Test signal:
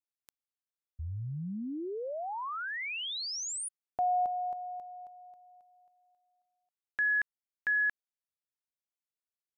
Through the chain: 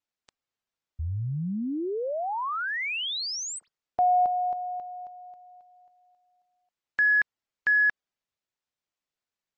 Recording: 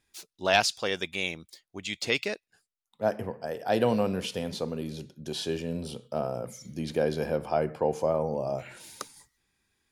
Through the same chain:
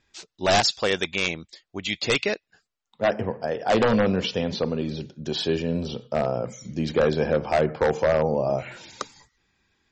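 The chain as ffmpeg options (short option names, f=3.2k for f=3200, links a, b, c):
-af "adynamicsmooth=sensitivity=2.5:basefreq=7.2k,aeval=exprs='0.106*(abs(mod(val(0)/0.106+3,4)-2)-1)':c=same,volume=7.5dB" -ar 44100 -c:a libmp3lame -b:a 32k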